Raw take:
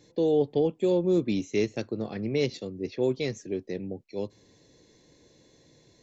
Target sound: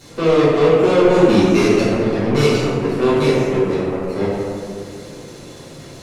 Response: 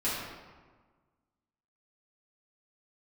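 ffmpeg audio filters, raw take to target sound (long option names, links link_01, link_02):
-filter_complex "[0:a]aeval=exprs='val(0)+0.5*0.0178*sgn(val(0))':channel_layout=same,asettb=1/sr,asplit=3[link_01][link_02][link_03];[link_01]atrim=end=1.064[link_04];[link_02]atrim=start=1.06:end=2.64,asetpts=PTS-STARTPTS,afade=type=in:duration=0.004:curve=qsin,afade=type=out:start_time=1.576:duration=0.004:curve=qsin,highshelf=frequency=2900:gain=5.5[link_05];[link_03]atrim=start=2.636[link_06];[link_04][link_05]acrossfade=duration=0.004:curve1=hsin:curve2=qsin[link_07];[link_07][link_06]acrossfade=duration=0.004:curve1=qsin:curve2=hsin,asoftclip=type=tanh:threshold=-18.5dB,aeval=exprs='0.112*(cos(1*acos(clip(val(0)/0.112,-1,1)))-cos(1*PI/2))+0.0224*(cos(7*acos(clip(val(0)/0.112,-1,1)))-cos(7*PI/2))':channel_layout=same[link_08];[1:a]atrim=start_sample=2205,asetrate=23814,aresample=44100[link_09];[link_08][link_09]afir=irnorm=-1:irlink=0"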